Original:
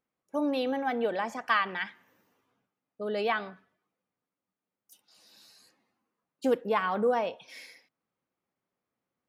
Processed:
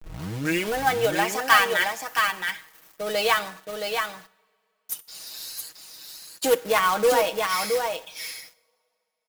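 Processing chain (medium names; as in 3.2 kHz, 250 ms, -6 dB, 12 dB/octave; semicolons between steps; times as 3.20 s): tape start-up on the opening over 0.82 s; in parallel at -2.5 dB: compression 16:1, threshold -40 dBFS, peak gain reduction 20 dB; on the sum: RIAA curve recording; on a send: delay 671 ms -5 dB; on the sum: companded quantiser 4-bit; comb 6.3 ms; two-slope reverb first 0.72 s, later 2.9 s, from -20 dB, DRR 19.5 dB; trim +4.5 dB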